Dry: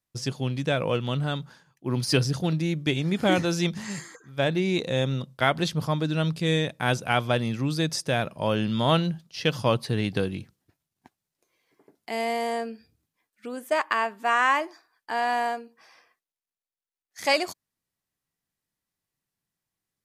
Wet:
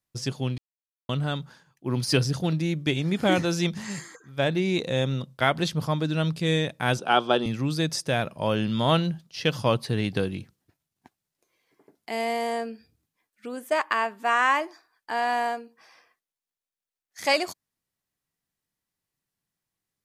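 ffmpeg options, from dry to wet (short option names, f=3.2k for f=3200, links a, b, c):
-filter_complex "[0:a]asettb=1/sr,asplit=3[a][b][c];[a]atrim=end=6.994[d];[b]atrim=start=6.99:end=7.46,asetpts=PTS-STARTPTS,afade=t=in:d=0.004:c=qsin,afade=t=out:st=0.466:d=0.004:c=qsin,highpass=f=180:w=0.5412,highpass=f=180:w=1.3066,equalizer=f=380:t=q:w=4:g=9,equalizer=f=800:t=q:w=4:g=6,equalizer=f=1.3k:t=q:w=4:g=5,equalizer=f=2.1k:t=q:w=4:g=-9,equalizer=f=3.2k:t=q:w=4:g=6,equalizer=f=7k:t=q:w=4:g=-6,lowpass=f=8.4k:w=0.5412,lowpass=f=8.4k:w=1.3066[e];[c]atrim=start=7.456[f];[d][e]acrossfade=d=0.004:c1=hsin:c2=qsin[g];[g][f]acrossfade=d=0.004:c1=qsin:c2=hsin,asplit=3[h][i][j];[h]atrim=end=0.58,asetpts=PTS-STARTPTS,afade=t=out:st=0.576:d=0.004:c=hsin[k];[i]atrim=start=0.58:end=1.09,asetpts=PTS-STARTPTS,volume=0[l];[j]atrim=start=1.09,asetpts=PTS-STARTPTS,afade=t=in:d=0.004:c=hsin[m];[k][l][m]concat=n=3:v=0:a=1"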